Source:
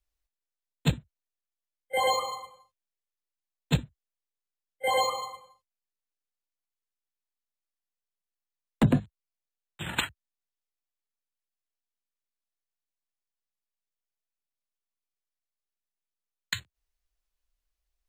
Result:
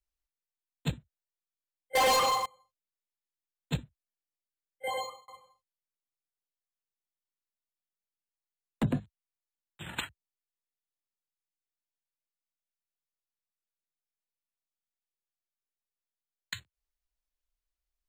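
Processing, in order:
0:01.95–0:02.46: leveller curve on the samples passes 5
0:04.87–0:05.28: fade out
level −7 dB

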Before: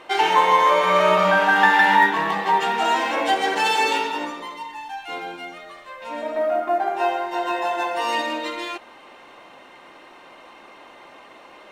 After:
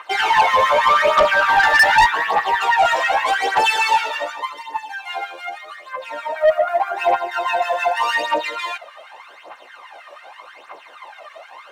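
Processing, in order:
auto-filter high-pass sine 6.3 Hz 510–1,700 Hz
phase shifter 0.84 Hz, delay 1.8 ms, feedback 66%
soft clipping −8 dBFS, distortion −9 dB

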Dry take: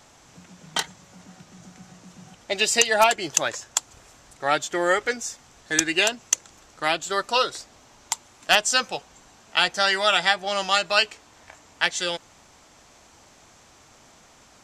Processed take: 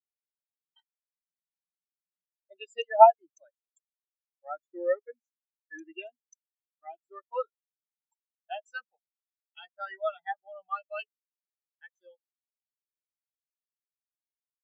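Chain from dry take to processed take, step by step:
in parallel at −10 dB: soft clipping −18 dBFS, distortion −8 dB
on the sum: every bin expanded away from the loudest bin 4 to 1

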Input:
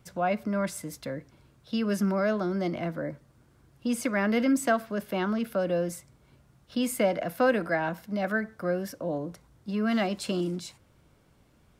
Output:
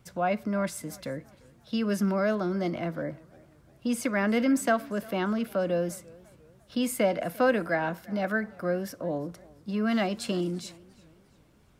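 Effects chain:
feedback echo with a swinging delay time 348 ms, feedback 42%, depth 104 cents, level −23.5 dB

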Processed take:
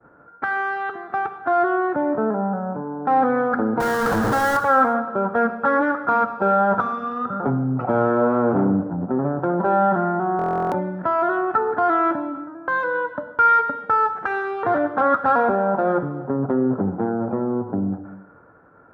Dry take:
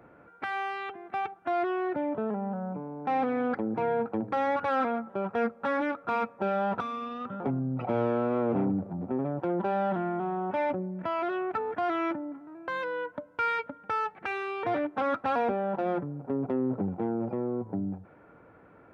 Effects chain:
0:03.80–0:04.57: sign of each sample alone
downward expander −49 dBFS
high shelf with overshoot 1,900 Hz −7.5 dB, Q 3
reverb whose tail is shaped and stops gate 420 ms falling, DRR 8 dB
buffer that repeats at 0:10.37, samples 1,024, times 14
level +7.5 dB

